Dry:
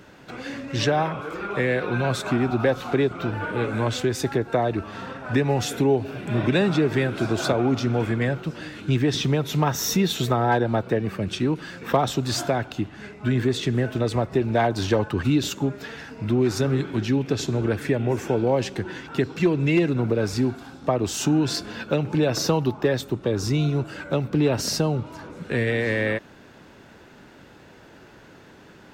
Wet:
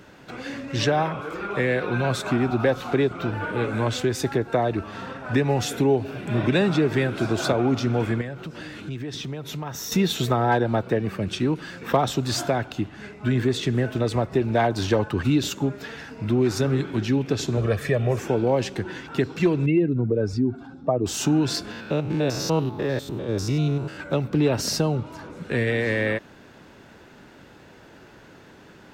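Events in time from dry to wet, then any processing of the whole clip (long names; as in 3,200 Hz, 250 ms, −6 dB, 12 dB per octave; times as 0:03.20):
0:08.21–0:09.92: downward compressor 3 to 1, threshold −32 dBFS
0:17.57–0:18.19: comb filter 1.7 ms, depth 69%
0:19.66–0:21.06: expanding power law on the bin magnitudes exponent 1.6
0:21.71–0:24.00: spectrum averaged block by block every 100 ms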